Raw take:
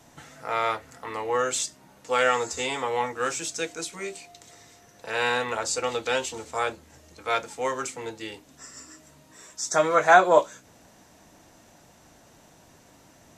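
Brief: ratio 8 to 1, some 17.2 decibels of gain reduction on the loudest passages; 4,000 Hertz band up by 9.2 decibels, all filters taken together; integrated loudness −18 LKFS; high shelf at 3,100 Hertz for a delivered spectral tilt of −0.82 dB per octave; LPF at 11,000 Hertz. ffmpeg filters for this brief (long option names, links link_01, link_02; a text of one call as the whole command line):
ffmpeg -i in.wav -af "lowpass=11000,highshelf=frequency=3100:gain=5.5,equalizer=frequency=4000:width_type=o:gain=7.5,acompressor=threshold=-28dB:ratio=8,volume=14.5dB" out.wav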